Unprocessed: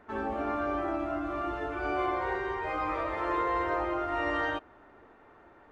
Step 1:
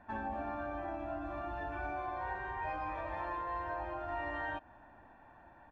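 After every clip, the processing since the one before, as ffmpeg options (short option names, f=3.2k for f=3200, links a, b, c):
-af "highshelf=f=3.9k:g=-10.5,acompressor=threshold=-34dB:ratio=6,aecho=1:1:1.2:0.77,volume=-3dB"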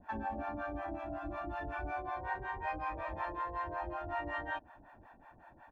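-filter_complex "[0:a]acrossover=split=570[a][b];[a]aeval=exprs='val(0)*(1-1/2+1/2*cos(2*PI*5.4*n/s))':c=same[c];[b]aeval=exprs='val(0)*(1-1/2-1/2*cos(2*PI*5.4*n/s))':c=same[d];[c][d]amix=inputs=2:normalize=0,volume=5dB"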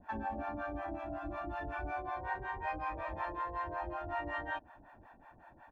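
-af anull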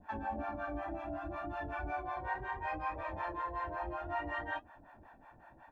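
-af "flanger=delay=9.4:depth=7.9:regen=-45:speed=0.65:shape=triangular,volume=4dB"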